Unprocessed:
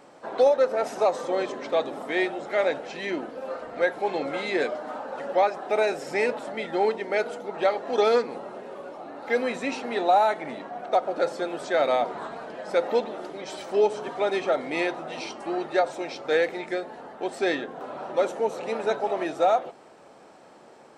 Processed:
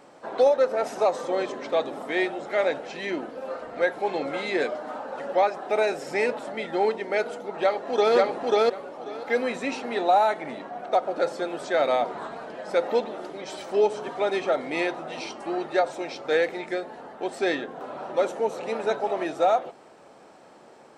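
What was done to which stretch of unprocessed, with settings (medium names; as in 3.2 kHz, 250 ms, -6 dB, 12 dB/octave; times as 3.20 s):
7.52–8.15 s: echo throw 540 ms, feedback 15%, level 0 dB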